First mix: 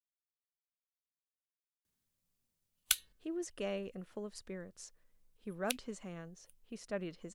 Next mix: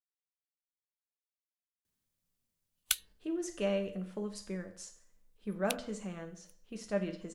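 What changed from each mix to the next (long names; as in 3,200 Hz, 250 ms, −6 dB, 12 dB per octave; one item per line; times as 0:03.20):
reverb: on, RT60 0.60 s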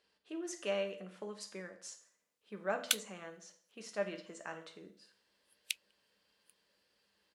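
speech: entry −2.95 s
master: add meter weighting curve A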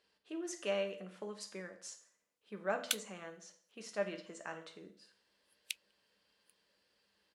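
background −3.5 dB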